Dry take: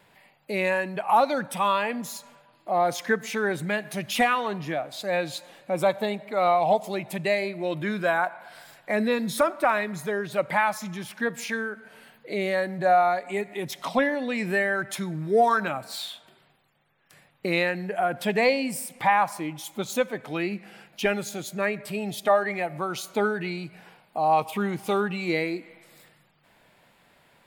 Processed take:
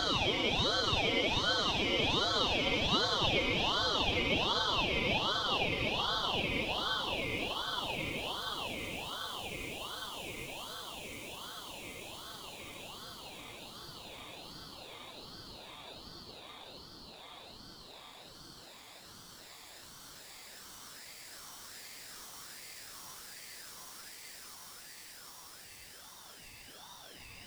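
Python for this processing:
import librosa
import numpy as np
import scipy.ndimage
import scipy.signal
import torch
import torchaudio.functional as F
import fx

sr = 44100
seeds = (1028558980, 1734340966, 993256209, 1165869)

y = fx.tracing_dist(x, sr, depth_ms=0.092)
y = fx.paulstretch(y, sr, seeds[0], factor=41.0, window_s=0.25, from_s=19.09)
y = fx.ladder_highpass(y, sr, hz=1000.0, resonance_pct=35)
y = fx.echo_diffused(y, sr, ms=1962, feedback_pct=55, wet_db=-7)
y = fx.ring_lfo(y, sr, carrier_hz=1800.0, swing_pct=30, hz=1.3)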